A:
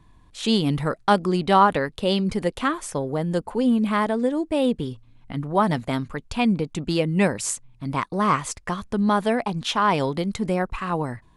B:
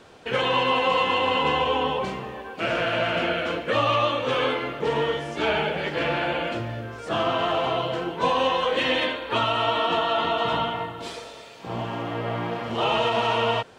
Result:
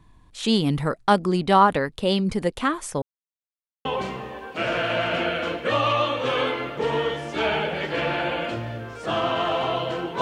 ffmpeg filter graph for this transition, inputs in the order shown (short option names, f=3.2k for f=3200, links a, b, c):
-filter_complex "[0:a]apad=whole_dur=10.21,atrim=end=10.21,asplit=2[a][b];[a]atrim=end=3.02,asetpts=PTS-STARTPTS,afade=t=out:st=3.016:d=0.004:c=hsin[c];[b]atrim=start=3.02:end=3.85,asetpts=PTS-STARTPTS,volume=0[d];[1:a]atrim=start=1.88:end=8.24,asetpts=PTS-STARTPTS,afade=t=in:d=0.004:c=hsin[e];[c][d][e]concat=n=3:v=0:a=1"